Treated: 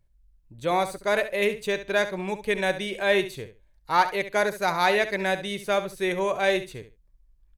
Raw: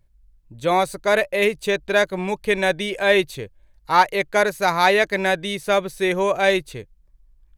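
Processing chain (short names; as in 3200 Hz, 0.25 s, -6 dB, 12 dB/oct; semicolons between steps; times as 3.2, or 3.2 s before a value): feedback echo 69 ms, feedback 18%, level -12 dB; gain -5.5 dB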